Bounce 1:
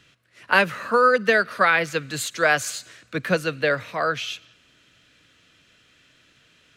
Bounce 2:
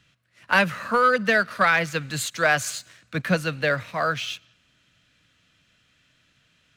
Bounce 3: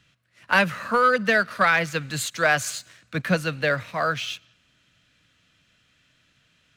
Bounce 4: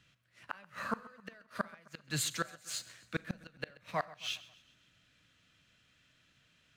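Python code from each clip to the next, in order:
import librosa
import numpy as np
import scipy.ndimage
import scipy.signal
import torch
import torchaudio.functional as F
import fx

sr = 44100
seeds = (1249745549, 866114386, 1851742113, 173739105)

y1 = fx.curve_eq(x, sr, hz=(190.0, 400.0, 630.0), db=(0, -10, -4))
y1 = fx.leveller(y1, sr, passes=1)
y2 = y1
y3 = fx.gate_flip(y2, sr, shuts_db=-15.0, range_db=-33)
y3 = fx.echo_feedback(y3, sr, ms=132, feedback_pct=51, wet_db=-20)
y3 = fx.rev_schroeder(y3, sr, rt60_s=0.39, comb_ms=29, drr_db=19.0)
y3 = y3 * 10.0 ** (-5.5 / 20.0)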